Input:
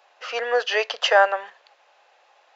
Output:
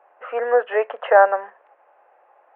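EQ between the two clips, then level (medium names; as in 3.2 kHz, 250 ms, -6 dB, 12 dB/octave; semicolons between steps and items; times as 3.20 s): Gaussian low-pass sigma 5.5 samples; +5.5 dB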